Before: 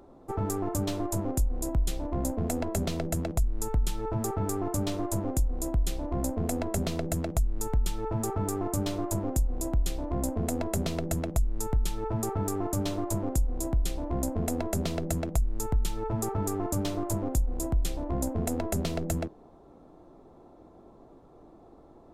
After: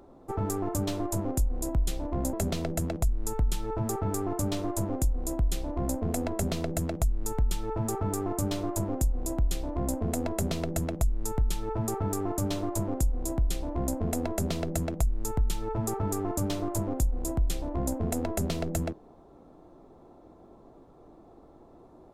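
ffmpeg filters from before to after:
-filter_complex "[0:a]asplit=2[a][b];[a]atrim=end=2.332[c];[b]atrim=start=2.678[d];[c][d]acrossfade=d=0.004:c1=hsin:c2=hsin"

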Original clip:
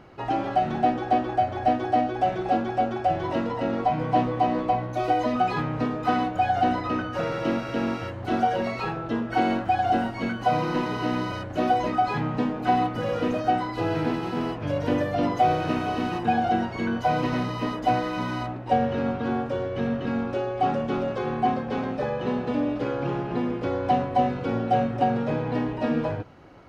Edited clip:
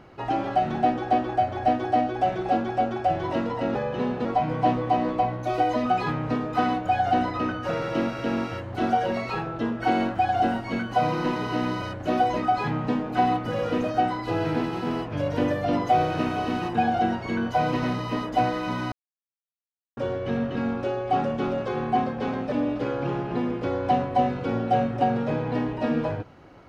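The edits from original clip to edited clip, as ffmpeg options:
-filter_complex "[0:a]asplit=6[a][b][c][d][e][f];[a]atrim=end=3.752[g];[b]atrim=start=22.018:end=22.522[h];[c]atrim=start=3.748:end=18.42,asetpts=PTS-STARTPTS,afade=t=out:st=14.668:d=0.004:c=hsin[i];[d]atrim=start=18.42:end=19.47,asetpts=PTS-STARTPTS,volume=0[j];[e]atrim=start=19.47:end=22.022,asetpts=PTS-STARTPTS,afade=t=in:d=0.004:c=hsin[k];[f]atrim=start=22.518[l];[g][h]acrossfade=d=0.004:c1=hsin:c2=hsin[m];[i][j][k]concat=n=3:v=0:a=1[n];[m][n]acrossfade=d=0.004:c1=hsin:c2=hsin[o];[o][l]acrossfade=d=0.004:c1=hsin:c2=hsin"

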